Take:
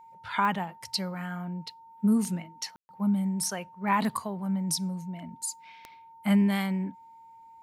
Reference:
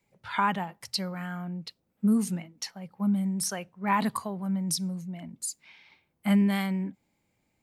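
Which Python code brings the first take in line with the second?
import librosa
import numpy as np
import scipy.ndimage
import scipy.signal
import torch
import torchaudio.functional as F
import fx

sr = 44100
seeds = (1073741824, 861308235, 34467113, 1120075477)

y = fx.fix_declick_ar(x, sr, threshold=10.0)
y = fx.notch(y, sr, hz=910.0, q=30.0)
y = fx.fix_ambience(y, sr, seeds[0], print_start_s=6.95, print_end_s=7.45, start_s=2.76, end_s=2.89)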